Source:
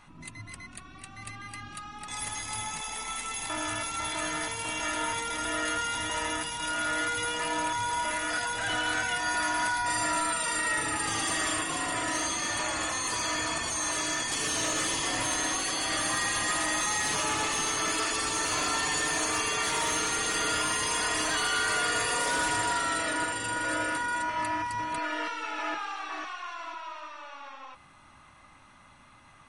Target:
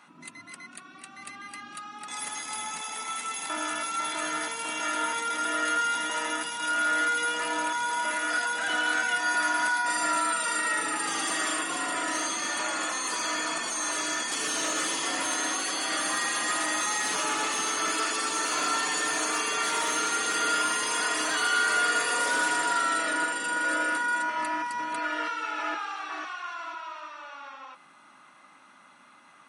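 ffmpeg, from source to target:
ffmpeg -i in.wav -af "highpass=frequency=200:width=0.5412,highpass=frequency=200:width=1.3066,equalizer=frequency=1400:width=6.9:gain=6.5" out.wav

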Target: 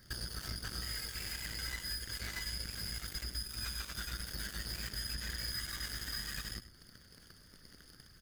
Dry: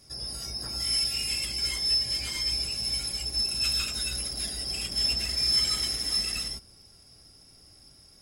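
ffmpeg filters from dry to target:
ffmpeg -i in.wav -af "firequalizer=gain_entry='entry(100,0);entry(400,-10);entry(980,-14);entry(1700,9);entry(2700,-16);entry(4200,-9);entry(9300,-21);entry(15000,3)':delay=0.05:min_phase=1,acompressor=threshold=-50dB:ratio=8,aeval=exprs='0.00841*(cos(1*acos(clip(val(0)/0.00841,-1,1)))-cos(1*PI/2))+0.000237*(cos(4*acos(clip(val(0)/0.00841,-1,1)))-cos(4*PI/2))+0.00188*(cos(7*acos(clip(val(0)/0.00841,-1,1)))-cos(7*PI/2))':channel_layout=same,asetrate=41625,aresample=44100,atempo=1.05946,aecho=1:1:100:0.211,volume=11.5dB" out.wav

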